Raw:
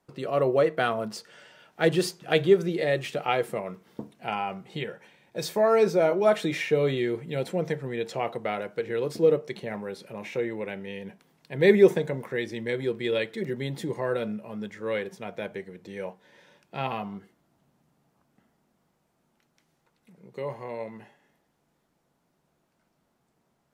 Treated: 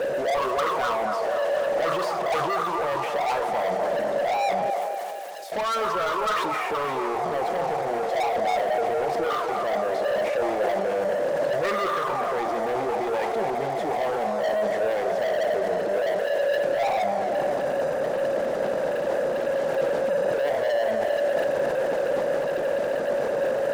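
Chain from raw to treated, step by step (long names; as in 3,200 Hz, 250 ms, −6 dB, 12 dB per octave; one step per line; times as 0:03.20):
converter with a step at zero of −22.5 dBFS
envelope filter 440–1,200 Hz, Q 15, up, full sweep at −15.5 dBFS
dynamic equaliser 870 Hz, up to −8 dB, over −51 dBFS, Q 1.8
leveller curve on the samples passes 5
0:04.70–0:05.52: first difference
delay with a band-pass on its return 245 ms, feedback 56%, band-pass 830 Hz, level −4 dB
level that may fall only so fast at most 20 dB per second
level +5 dB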